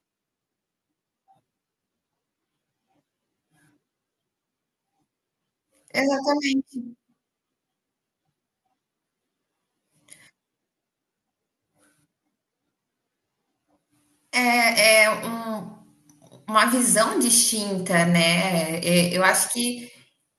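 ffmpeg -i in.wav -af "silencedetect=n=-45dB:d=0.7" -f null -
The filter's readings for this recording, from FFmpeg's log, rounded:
silence_start: 0.00
silence_end: 5.88 | silence_duration: 5.88
silence_start: 6.93
silence_end: 10.09 | silence_duration: 3.15
silence_start: 10.27
silence_end: 14.33 | silence_duration: 4.06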